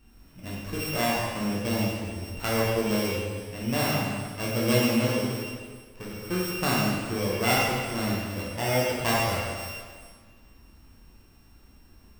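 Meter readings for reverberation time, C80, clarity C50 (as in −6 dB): 1.7 s, 1.0 dB, −1.5 dB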